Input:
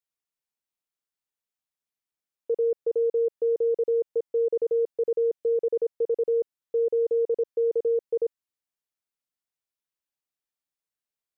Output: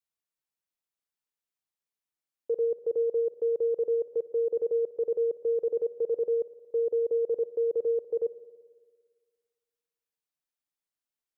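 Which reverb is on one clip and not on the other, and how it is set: spring tank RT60 1.7 s, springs 57 ms, chirp 50 ms, DRR 15.5 dB; gain -2.5 dB

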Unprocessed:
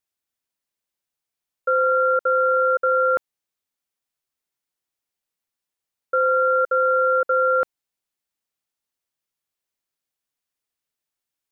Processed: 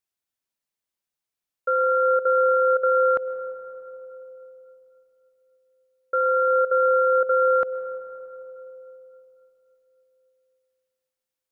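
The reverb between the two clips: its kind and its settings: digital reverb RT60 3.6 s, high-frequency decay 0.3×, pre-delay 75 ms, DRR 12 dB; gain -2.5 dB

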